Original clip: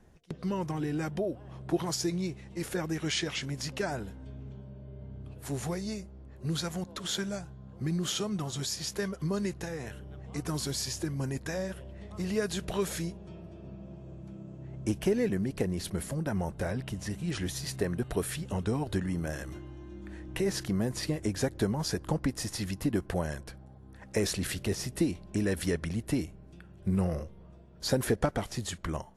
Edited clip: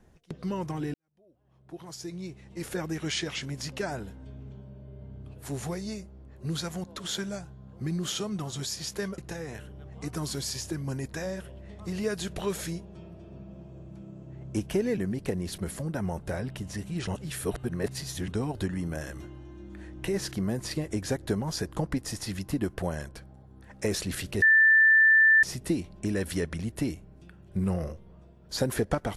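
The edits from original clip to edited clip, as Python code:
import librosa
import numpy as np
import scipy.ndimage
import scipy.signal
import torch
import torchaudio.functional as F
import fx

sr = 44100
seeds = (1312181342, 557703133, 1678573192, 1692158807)

y = fx.edit(x, sr, fx.fade_in_span(start_s=0.94, length_s=1.78, curve='qua'),
    fx.cut(start_s=9.18, length_s=0.32),
    fx.reverse_span(start_s=17.39, length_s=1.21),
    fx.insert_tone(at_s=24.74, length_s=1.01, hz=1770.0, db=-15.5), tone=tone)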